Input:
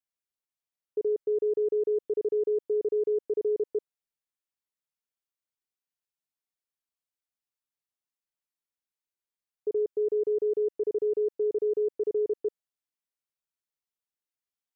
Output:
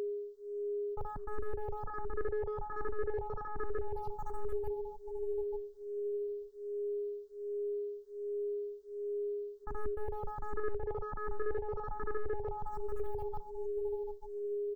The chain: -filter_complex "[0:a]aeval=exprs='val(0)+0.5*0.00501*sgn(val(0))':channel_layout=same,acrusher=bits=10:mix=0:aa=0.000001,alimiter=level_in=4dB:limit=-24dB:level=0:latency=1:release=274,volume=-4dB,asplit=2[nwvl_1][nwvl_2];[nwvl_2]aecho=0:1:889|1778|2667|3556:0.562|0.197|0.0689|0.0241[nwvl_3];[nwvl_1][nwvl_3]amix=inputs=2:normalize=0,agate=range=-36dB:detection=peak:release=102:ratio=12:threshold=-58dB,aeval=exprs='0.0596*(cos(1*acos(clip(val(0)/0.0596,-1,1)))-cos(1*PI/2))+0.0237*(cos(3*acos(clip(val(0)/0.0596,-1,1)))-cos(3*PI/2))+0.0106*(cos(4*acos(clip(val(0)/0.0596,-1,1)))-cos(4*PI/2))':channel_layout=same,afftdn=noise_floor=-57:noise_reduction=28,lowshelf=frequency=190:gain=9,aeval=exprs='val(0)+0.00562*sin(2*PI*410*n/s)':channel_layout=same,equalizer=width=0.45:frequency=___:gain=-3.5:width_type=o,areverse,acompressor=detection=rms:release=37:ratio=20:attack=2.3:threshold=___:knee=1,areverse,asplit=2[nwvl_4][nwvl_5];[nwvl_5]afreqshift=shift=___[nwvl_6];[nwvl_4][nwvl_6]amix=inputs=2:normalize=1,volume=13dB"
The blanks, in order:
310, -40dB, 1.3